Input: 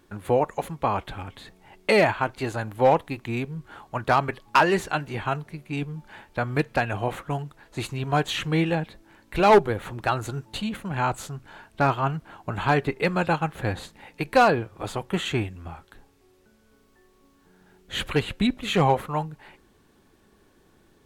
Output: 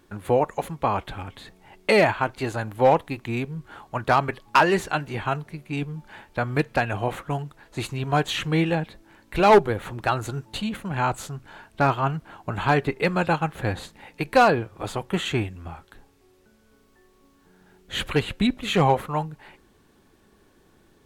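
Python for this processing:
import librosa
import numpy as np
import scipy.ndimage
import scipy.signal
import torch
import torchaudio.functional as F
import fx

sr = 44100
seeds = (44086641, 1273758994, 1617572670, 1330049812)

y = x * 10.0 ** (1.0 / 20.0)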